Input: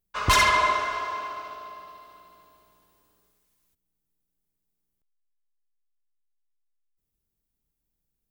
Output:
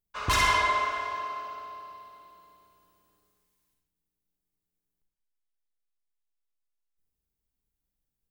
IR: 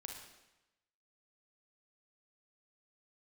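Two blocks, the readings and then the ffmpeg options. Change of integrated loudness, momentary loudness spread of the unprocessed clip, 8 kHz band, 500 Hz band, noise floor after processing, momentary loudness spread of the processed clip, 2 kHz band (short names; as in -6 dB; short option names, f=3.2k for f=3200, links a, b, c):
-3.5 dB, 22 LU, -4.5 dB, -4.5 dB, under -85 dBFS, 19 LU, -3.5 dB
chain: -filter_complex "[1:a]atrim=start_sample=2205,afade=t=out:st=0.27:d=0.01,atrim=end_sample=12348[a];[0:a][a]afir=irnorm=-1:irlink=0"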